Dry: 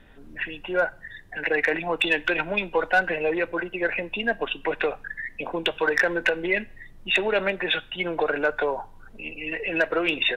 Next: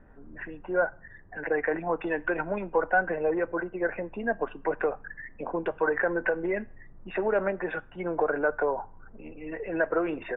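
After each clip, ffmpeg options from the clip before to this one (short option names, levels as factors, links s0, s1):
-af "lowpass=f=1500:w=0.5412,lowpass=f=1500:w=1.3066,volume=0.841"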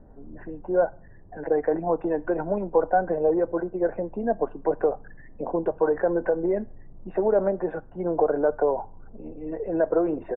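-af "firequalizer=gain_entry='entry(710,0);entry(1300,-12);entry(2400,-23)':delay=0.05:min_phase=1,volume=1.78"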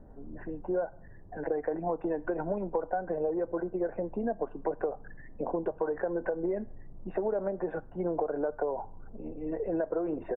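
-af "acompressor=threshold=0.0501:ratio=6,volume=0.841"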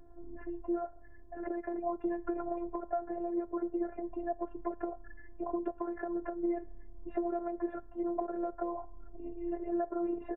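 -af "afftfilt=real='hypot(re,im)*cos(PI*b)':imag='0':win_size=512:overlap=0.75"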